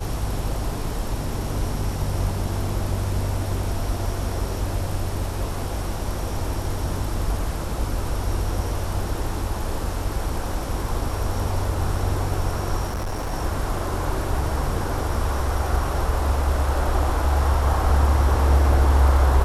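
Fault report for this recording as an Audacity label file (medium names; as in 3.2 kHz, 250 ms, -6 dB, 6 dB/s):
12.870000	13.330000	clipped -23.5 dBFS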